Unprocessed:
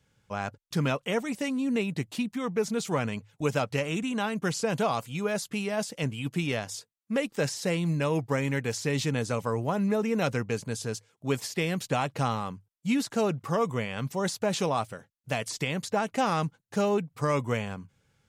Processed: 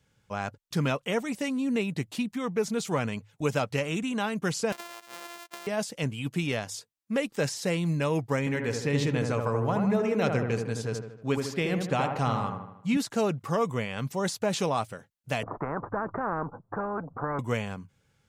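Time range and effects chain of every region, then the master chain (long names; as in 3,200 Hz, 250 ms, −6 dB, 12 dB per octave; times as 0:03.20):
0:04.72–0:05.67: samples sorted by size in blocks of 128 samples + high-pass filter 690 Hz + downward compressor 16 to 1, threshold −35 dBFS
0:08.39–0:12.97: high-shelf EQ 7,400 Hz −9.5 dB + delay with a low-pass on its return 77 ms, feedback 51%, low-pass 1,700 Hz, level −4 dB
0:15.43–0:17.39: Butterworth low-pass 1,200 Hz 48 dB per octave + every bin compressed towards the loudest bin 4 to 1
whole clip: no processing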